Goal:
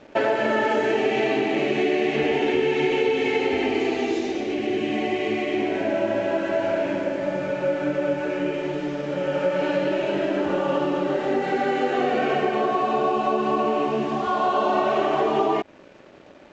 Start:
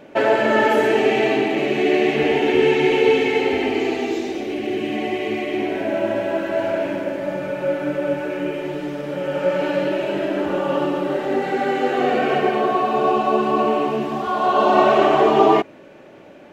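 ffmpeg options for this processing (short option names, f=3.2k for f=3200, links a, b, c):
-af "acompressor=threshold=-18dB:ratio=5,aresample=16000,aeval=exprs='sgn(val(0))*max(abs(val(0))-0.00355,0)':c=same,aresample=44100"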